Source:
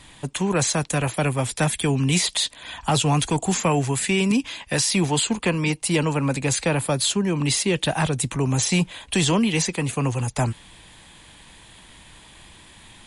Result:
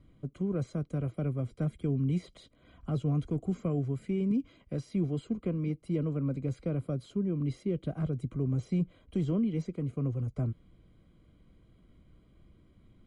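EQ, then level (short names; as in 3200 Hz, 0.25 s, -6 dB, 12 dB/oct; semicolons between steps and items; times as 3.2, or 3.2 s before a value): running mean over 50 samples; -7.0 dB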